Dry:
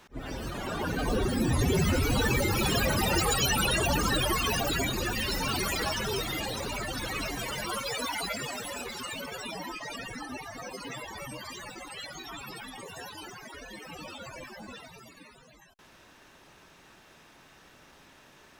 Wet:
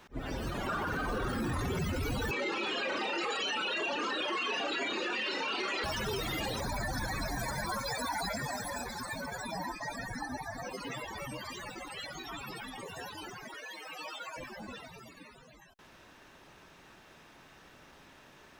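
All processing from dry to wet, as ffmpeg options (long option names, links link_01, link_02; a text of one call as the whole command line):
ffmpeg -i in.wav -filter_complex "[0:a]asettb=1/sr,asplit=3[link_01][link_02][link_03];[link_01]atrim=end=0.684[link_04];[link_02]atrim=start=0.68:end=1.79,asetpts=PTS-STARTPTS,afade=type=in:duration=0.004:curve=qsin,afade=type=out:start_time=1.106:duration=0.004:curve=qsin,equalizer=frequency=1300:width_type=o:width=0.75:gain=11,aeval=exprs='sgn(val(0))*max(abs(val(0))-0.00398,0)':channel_layout=same,asplit=2[link_05][link_06];[link_06]adelay=49,volume=-7dB[link_07];[link_05][link_07]amix=inputs=2:normalize=0,atrim=end_sample=48951[link_08];[link_03]atrim=start=1.786[link_09];[link_04][link_08]acrossfade=duration=0.004:curve1=hsin:curve2=qsin[link_10];[link_10][link_09]acrossfade=duration=0.004:curve1=qsin:curve2=hsin,asettb=1/sr,asplit=3[link_11][link_12][link_13];[link_11]atrim=end=2.314[link_14];[link_12]atrim=start=2.31:end=5.84,asetpts=PTS-STARTPTS,afade=type=in:duration=0.004:curve=qsin,afade=type=out:start_time=3.526:duration=0.004:curve=qsin,highpass=frequency=300:width=0.5412,highpass=frequency=300:width=1.3066,equalizer=frequency=700:width_type=q:width=4:gain=-4,equalizer=frequency=2700:width_type=q:width=4:gain=5,equalizer=frequency=5400:width_type=q:width=4:gain=-7,lowpass=frequency=5800:width=0.5412,lowpass=frequency=5800:width=1.3066,asplit=2[link_15][link_16];[link_16]adelay=32,volume=-5dB[link_17];[link_15][link_17]amix=inputs=2:normalize=0,atrim=end_sample=155673[link_18];[link_13]atrim=start=5.836[link_19];[link_14][link_18]acrossfade=duration=0.004:curve1=hsin:curve2=qsin[link_20];[link_20][link_19]acrossfade=duration=0.004:curve1=qsin:curve2=hsin,asettb=1/sr,asplit=3[link_21][link_22][link_23];[link_21]atrim=end=6.614[link_24];[link_22]atrim=start=6.61:end=10.65,asetpts=PTS-STARTPTS,afade=type=in:duration=0.004:curve=qsin,afade=type=out:start_time=4.036:duration=0.004:curve=qsin,asuperstop=centerf=2900:order=4:qfactor=1.9,aecho=1:1:1.2:0.56,atrim=end_sample=178164[link_25];[link_23]atrim=start=10.646[link_26];[link_24][link_25]acrossfade=duration=0.004:curve1=hsin:curve2=qsin[link_27];[link_27][link_26]acrossfade=duration=0.004:curve1=qsin:curve2=hsin,asettb=1/sr,asplit=3[link_28][link_29][link_30];[link_28]atrim=end=13.544[link_31];[link_29]atrim=start=13.54:end=14.37,asetpts=PTS-STARTPTS,afade=type=in:duration=0.004:curve=qsin,afade=type=out:start_time=0.826:duration=0.004:curve=qsin,highpass=600,aecho=1:1:6.4:0.76,atrim=end_sample=36603[link_32];[link_30]atrim=start=14.366[link_33];[link_31][link_32]acrossfade=duration=0.004:curve1=hsin:curve2=qsin[link_34];[link_34][link_33]acrossfade=duration=0.004:curve1=qsin:curve2=hsin,equalizer=frequency=10000:width_type=o:width=2:gain=-4.5,alimiter=level_in=2dB:limit=-24dB:level=0:latency=1:release=12,volume=-2dB" out.wav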